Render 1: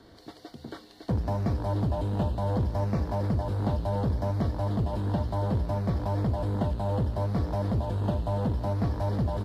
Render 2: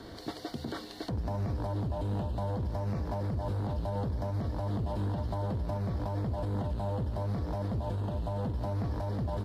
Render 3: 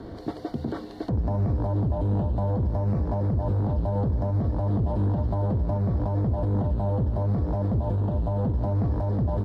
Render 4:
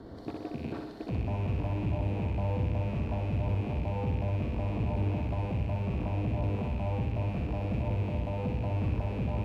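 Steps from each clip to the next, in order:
downward compressor, threshold −35 dBFS, peak gain reduction 12 dB; brickwall limiter −33 dBFS, peak gain reduction 9.5 dB; level +7.5 dB
tilt shelving filter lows +8.5 dB, about 1,500 Hz
loose part that buzzes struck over −31 dBFS, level −32 dBFS; on a send: flutter between parallel walls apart 10.7 metres, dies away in 0.85 s; on the sum: level −7.5 dB

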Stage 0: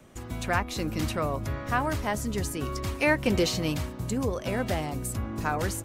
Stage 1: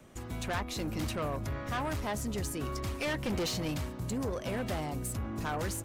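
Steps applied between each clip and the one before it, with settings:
soft clipping −26.5 dBFS, distortion −9 dB
level −2 dB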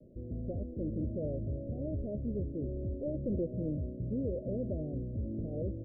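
Butterworth low-pass 620 Hz 96 dB per octave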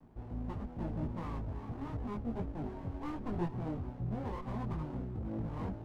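lower of the sound and its delayed copy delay 0.82 ms
multi-voice chorus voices 6, 0.39 Hz, delay 21 ms, depth 4.3 ms
level +1.5 dB

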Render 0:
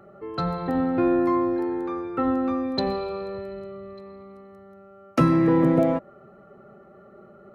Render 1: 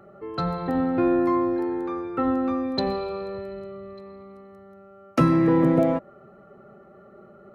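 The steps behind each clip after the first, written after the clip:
no processing that can be heard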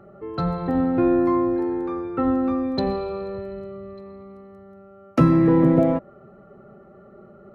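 spectral tilt −1.5 dB per octave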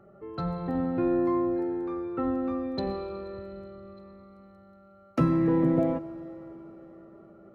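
convolution reverb RT60 4.7 s, pre-delay 40 ms, DRR 14.5 dB
level −7.5 dB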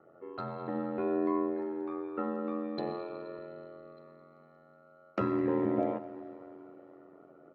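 band-pass filter 280–3,800 Hz
repeating echo 211 ms, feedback 46%, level −18 dB
ring modulation 43 Hz

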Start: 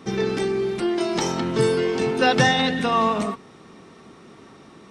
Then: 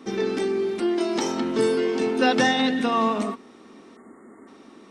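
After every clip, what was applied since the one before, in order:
low shelf with overshoot 190 Hz −7.5 dB, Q 3
time-frequency box erased 0:03.97–0:04.48, 2,200–6,800 Hz
level −3 dB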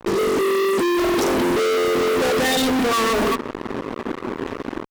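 spectral envelope exaggerated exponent 2
automatic gain control gain up to 6.5 dB
fuzz pedal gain 42 dB, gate −40 dBFS
level −5 dB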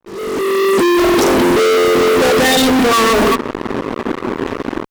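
fade in at the beginning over 0.77 s
level +7.5 dB

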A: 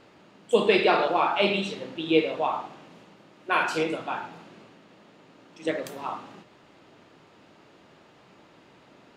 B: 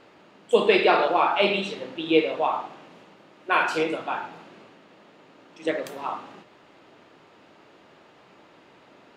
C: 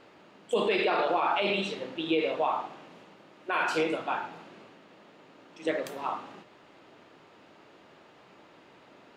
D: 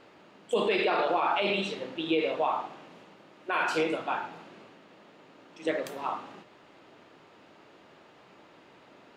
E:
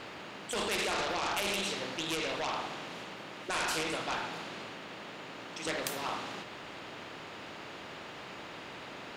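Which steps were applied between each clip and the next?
bass and treble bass −6 dB, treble −4 dB; level +2.5 dB
brickwall limiter −15.5 dBFS, peak gain reduction 9.5 dB; level −2 dB
no processing that can be heard
harmonic generator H 5 −19 dB, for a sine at −17 dBFS; every bin compressed towards the loudest bin 2 to 1

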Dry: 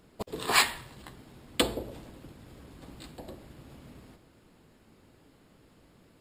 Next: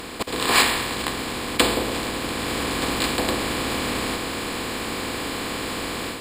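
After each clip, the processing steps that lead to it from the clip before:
compressor on every frequency bin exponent 0.4
automatic gain control gain up to 7 dB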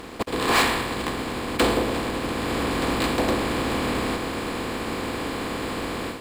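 high-shelf EQ 2,300 Hz −9.5 dB
leveller curve on the samples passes 3
expander for the loud parts 1.5 to 1, over −25 dBFS
level −5.5 dB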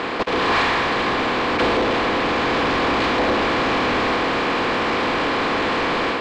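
mid-hump overdrive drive 28 dB, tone 5,800 Hz, clips at −12 dBFS
high-frequency loss of the air 180 metres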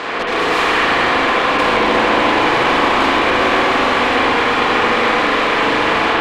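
mid-hump overdrive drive 8 dB, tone 6,400 Hz, clips at −12.5 dBFS
soft clipping −18 dBFS, distortion −20 dB
spring reverb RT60 3.7 s, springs 37/44 ms, chirp 50 ms, DRR −6.5 dB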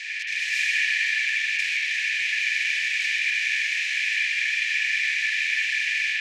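Chebyshev high-pass with heavy ripple 1,700 Hz, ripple 9 dB

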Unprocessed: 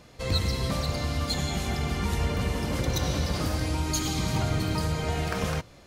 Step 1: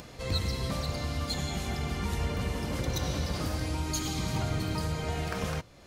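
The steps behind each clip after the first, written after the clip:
upward compression, threshold −34 dBFS
level −4 dB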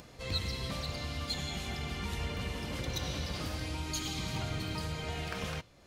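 dynamic equaliser 3,000 Hz, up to +7 dB, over −51 dBFS, Q 0.95
level −6 dB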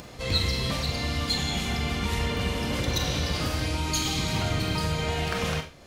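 four-comb reverb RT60 0.31 s, combs from 30 ms, DRR 6 dB
level +8.5 dB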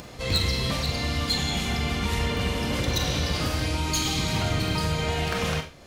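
wavefolder on the positive side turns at −18.5 dBFS
level +1.5 dB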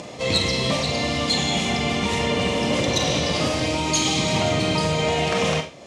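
loudspeaker in its box 150–8,700 Hz, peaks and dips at 600 Hz +5 dB, 1,500 Hz −9 dB, 4,400 Hz −4 dB
level +6.5 dB

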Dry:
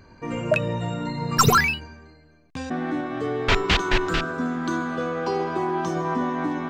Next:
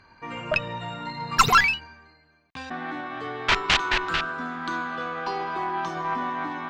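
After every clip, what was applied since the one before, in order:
flat-topped bell 1,900 Hz +11 dB 3 octaves
harmonic generator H 2 −6 dB, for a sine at 4.5 dBFS
level −10 dB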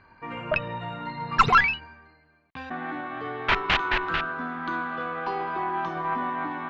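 low-pass filter 2,700 Hz 12 dB per octave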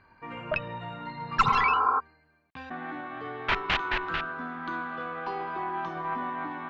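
healed spectral selection 0:01.48–0:01.97, 240–1,700 Hz before
level −4 dB

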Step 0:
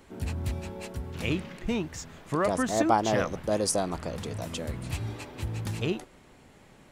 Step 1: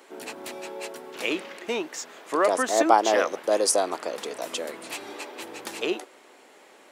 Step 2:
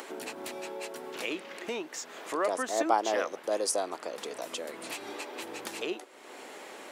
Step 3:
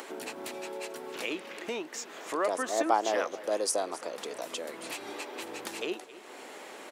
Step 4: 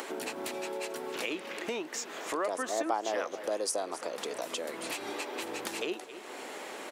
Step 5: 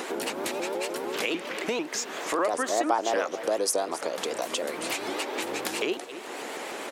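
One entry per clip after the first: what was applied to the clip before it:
high-pass filter 340 Hz 24 dB per octave; level +5.5 dB
upward compression, threshold −24 dBFS; level −7.5 dB
single-tap delay 267 ms −17 dB
downward compressor 2 to 1, threshold −37 dBFS, peak gain reduction 10 dB; level +3.5 dB
pitch modulation by a square or saw wave saw up 6.7 Hz, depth 160 cents; level +6 dB

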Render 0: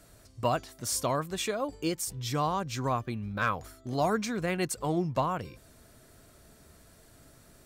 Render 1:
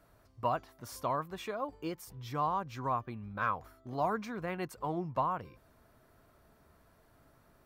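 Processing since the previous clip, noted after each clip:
octave-band graphic EQ 1,000/4,000/8,000 Hz +8/−3/−12 dB
level −8 dB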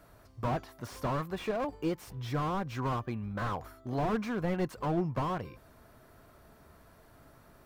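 slew-rate limiting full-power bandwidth 11 Hz
level +6.5 dB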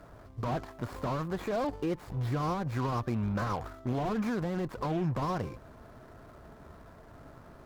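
running median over 15 samples
brickwall limiter −31 dBFS, peak gain reduction 11.5 dB
harmonic generator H 8 −24 dB, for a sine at −31 dBFS
level +7 dB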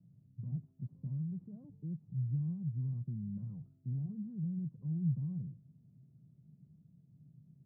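flat-topped band-pass 150 Hz, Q 2.4

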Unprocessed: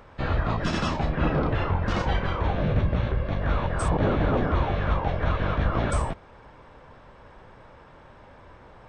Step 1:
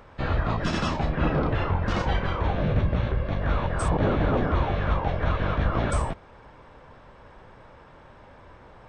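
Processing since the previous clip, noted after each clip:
no processing that can be heard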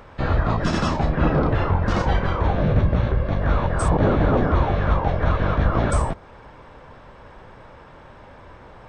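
dynamic equaliser 2,800 Hz, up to −5 dB, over −50 dBFS, Q 1.2
level +5 dB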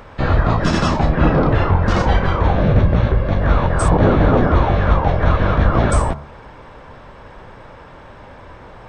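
hum removal 71.87 Hz, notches 22
level +5.5 dB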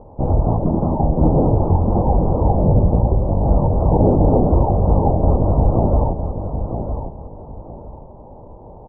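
elliptic low-pass filter 870 Hz, stop band 50 dB
on a send: repeating echo 957 ms, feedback 25%, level −8 dB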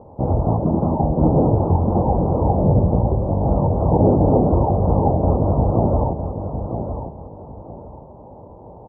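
high-pass filter 70 Hz

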